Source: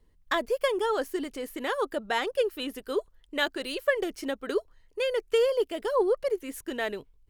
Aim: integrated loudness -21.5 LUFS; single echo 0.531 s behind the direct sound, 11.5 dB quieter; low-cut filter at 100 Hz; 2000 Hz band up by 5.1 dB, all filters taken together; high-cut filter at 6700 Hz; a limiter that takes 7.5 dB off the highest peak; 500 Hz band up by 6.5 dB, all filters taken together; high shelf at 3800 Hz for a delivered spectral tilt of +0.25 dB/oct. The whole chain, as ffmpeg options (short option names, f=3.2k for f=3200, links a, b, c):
-af "highpass=100,lowpass=6.7k,equalizer=f=500:t=o:g=7,equalizer=f=2k:t=o:g=4,highshelf=f=3.8k:g=8,alimiter=limit=-15.5dB:level=0:latency=1,aecho=1:1:531:0.266,volume=4.5dB"